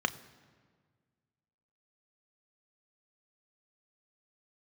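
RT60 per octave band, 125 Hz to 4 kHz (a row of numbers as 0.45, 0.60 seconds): 2.2, 2.0, 1.8, 1.6, 1.4, 1.2 seconds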